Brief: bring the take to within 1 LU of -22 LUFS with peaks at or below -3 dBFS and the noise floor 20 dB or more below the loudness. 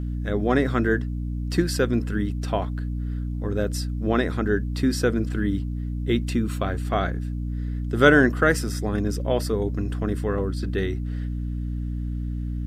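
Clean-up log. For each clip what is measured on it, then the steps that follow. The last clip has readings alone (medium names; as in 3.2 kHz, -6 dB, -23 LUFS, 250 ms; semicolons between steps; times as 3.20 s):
hum 60 Hz; highest harmonic 300 Hz; hum level -25 dBFS; loudness -25.0 LUFS; peak level -2.0 dBFS; loudness target -22.0 LUFS
-> de-hum 60 Hz, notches 5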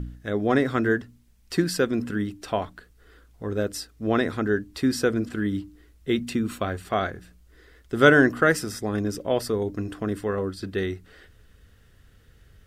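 hum not found; loudness -25.0 LUFS; peak level -2.0 dBFS; loudness target -22.0 LUFS
-> trim +3 dB; peak limiter -3 dBFS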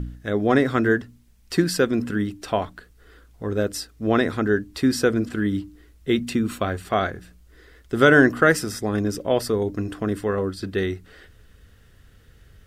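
loudness -22.5 LUFS; peak level -3.0 dBFS; noise floor -54 dBFS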